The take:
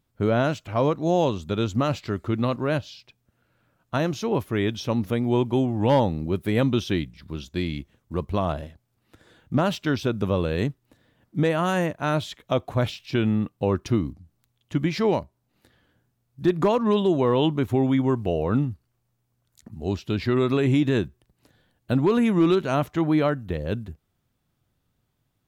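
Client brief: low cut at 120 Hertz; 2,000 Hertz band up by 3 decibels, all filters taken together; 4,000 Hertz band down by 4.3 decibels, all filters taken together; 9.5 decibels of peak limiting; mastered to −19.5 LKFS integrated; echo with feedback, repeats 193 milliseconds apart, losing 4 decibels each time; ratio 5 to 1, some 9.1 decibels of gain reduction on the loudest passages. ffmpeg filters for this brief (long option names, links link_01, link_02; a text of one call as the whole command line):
ffmpeg -i in.wav -af "highpass=120,equalizer=frequency=2000:width_type=o:gain=6,equalizer=frequency=4000:width_type=o:gain=-8.5,acompressor=threshold=-26dB:ratio=5,alimiter=limit=-21.5dB:level=0:latency=1,aecho=1:1:193|386|579|772|965|1158|1351|1544|1737:0.631|0.398|0.25|0.158|0.0994|0.0626|0.0394|0.0249|0.0157,volume=12dB" out.wav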